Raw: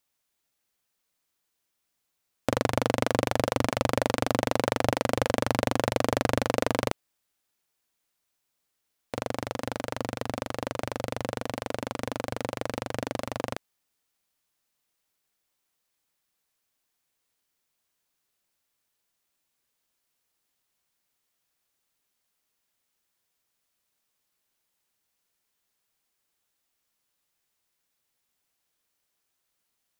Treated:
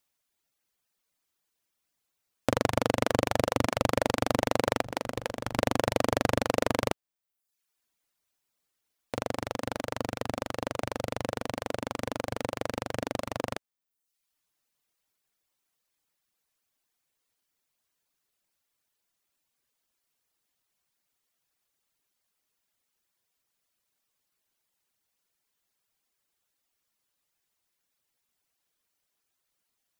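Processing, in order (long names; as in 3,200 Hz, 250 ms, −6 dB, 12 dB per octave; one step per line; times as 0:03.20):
reverb reduction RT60 0.74 s
0:04.84–0:05.59: compressor whose output falls as the input rises −32 dBFS, ratio −0.5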